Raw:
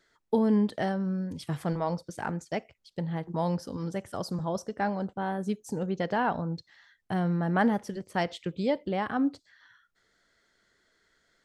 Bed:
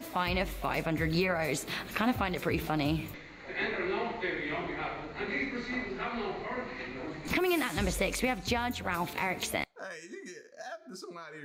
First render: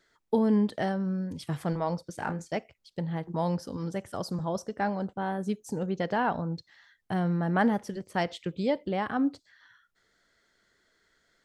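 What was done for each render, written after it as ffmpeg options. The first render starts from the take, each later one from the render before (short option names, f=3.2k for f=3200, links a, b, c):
-filter_complex "[0:a]asettb=1/sr,asplit=3[a][b][c];[a]atrim=end=2.174[d];[b]atrim=start=2.17:end=2.57,asetpts=PTS-STARTPTS,afade=t=in:d=0.004:c=qsin,afade=t=out:st=0.396:d=0.004:c=qsin,asplit=2[e][f];[f]adelay=31,volume=-8dB[g];[e][g]amix=inputs=2:normalize=0,atrim=end_sample=17640[h];[c]atrim=start=2.566[i];[d][h]acrossfade=d=0.004:c1=hsin:c2=qsin[j];[j][i]acrossfade=d=0.004:c1=qsin:c2=hsin"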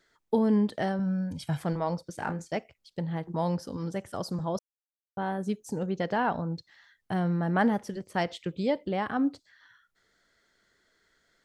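-filter_complex "[0:a]asettb=1/sr,asplit=3[a][b][c];[a]atrim=end=0.994[d];[b]atrim=start=0.99:end=1.6,asetpts=PTS-STARTPTS,afade=t=in:d=0.004:c=qsin,afade=t=out:st=0.606:d=0.004:c=qsin,aecho=1:1:1.3:0.65,atrim=end_sample=26901[e];[c]atrim=start=1.596[f];[d][e]acrossfade=d=0.004:c1=hsin:c2=qsin[g];[g][f]acrossfade=d=0.004:c1=qsin:c2=hsin,asplit=3[h][i][j];[h]atrim=end=4.59,asetpts=PTS-STARTPTS,afade=t=out:st=4.586:d=0.004:c=hsin[k];[i]atrim=start=4.59:end=5.17,asetpts=PTS-STARTPTS,volume=0[l];[j]atrim=start=5.17,asetpts=PTS-STARTPTS,afade=t=in:d=0.004:c=hsin[m];[k][l][m]concat=n=3:v=0:a=1"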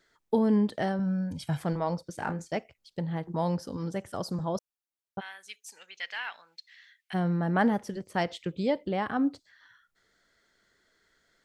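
-filter_complex "[0:a]asplit=3[a][b][c];[a]afade=t=out:st=5.19:d=0.02[d];[b]highpass=f=2.3k:t=q:w=2.5,afade=t=in:st=5.19:d=0.02,afade=t=out:st=7.13:d=0.02[e];[c]afade=t=in:st=7.13:d=0.02[f];[d][e][f]amix=inputs=3:normalize=0"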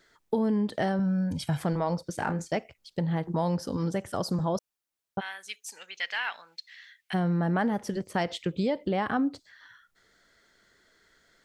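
-filter_complex "[0:a]asplit=2[a][b];[b]alimiter=level_in=1dB:limit=-24dB:level=0:latency=1:release=111,volume=-1dB,volume=-1.5dB[c];[a][c]amix=inputs=2:normalize=0,acompressor=threshold=-23dB:ratio=6"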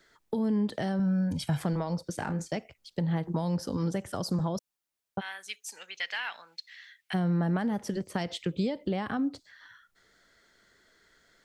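-filter_complex "[0:a]acrossover=split=270|3000[a][b][c];[b]acompressor=threshold=-32dB:ratio=6[d];[a][d][c]amix=inputs=3:normalize=0"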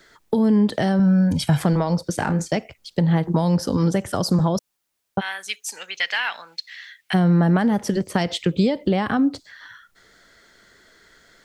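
-af "volume=10.5dB"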